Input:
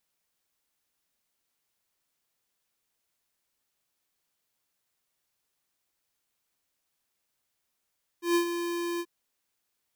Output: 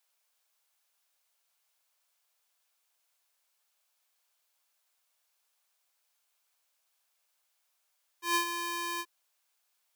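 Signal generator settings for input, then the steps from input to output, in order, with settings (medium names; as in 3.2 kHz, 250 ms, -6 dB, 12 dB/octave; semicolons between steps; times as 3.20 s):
ADSR square 344 Hz, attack 132 ms, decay 95 ms, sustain -9 dB, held 0.78 s, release 53 ms -22.5 dBFS
high-pass 560 Hz 24 dB/octave; band-stop 1.9 kHz, Q 16; in parallel at -7 dB: short-mantissa float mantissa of 2-bit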